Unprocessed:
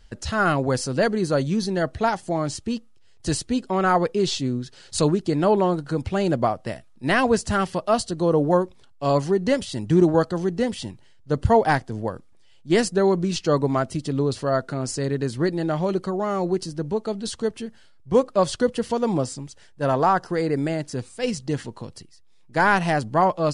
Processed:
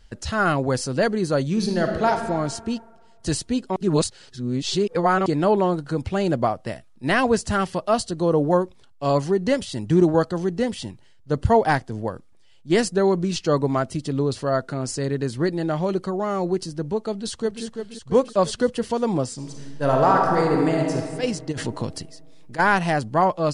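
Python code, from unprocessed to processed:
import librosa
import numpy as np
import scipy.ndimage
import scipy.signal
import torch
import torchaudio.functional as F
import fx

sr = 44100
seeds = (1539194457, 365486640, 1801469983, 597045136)

y = fx.reverb_throw(x, sr, start_s=1.49, length_s=0.62, rt60_s=1.7, drr_db=3.0)
y = fx.echo_throw(y, sr, start_s=17.11, length_s=0.53, ms=340, feedback_pct=60, wet_db=-7.0)
y = fx.reverb_throw(y, sr, start_s=19.34, length_s=1.61, rt60_s=2.0, drr_db=0.0)
y = fx.over_compress(y, sr, threshold_db=-32.0, ratio=-1.0, at=(21.51, 22.58), fade=0.02)
y = fx.edit(y, sr, fx.reverse_span(start_s=3.76, length_s=1.5), tone=tone)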